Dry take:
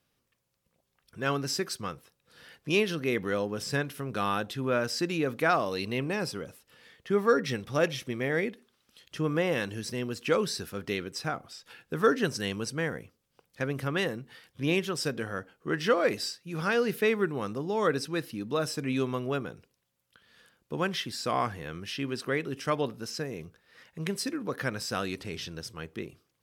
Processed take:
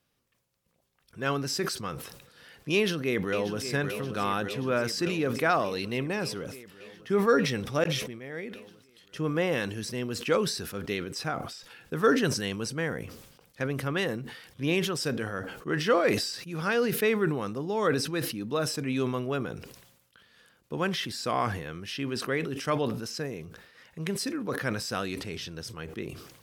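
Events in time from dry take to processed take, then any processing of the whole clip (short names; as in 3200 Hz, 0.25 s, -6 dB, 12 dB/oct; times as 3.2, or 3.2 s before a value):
2.74–3.65 echo throw 0.58 s, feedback 75%, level -10 dB
7.84–9.42 fade in
whole clip: sustainer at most 60 dB/s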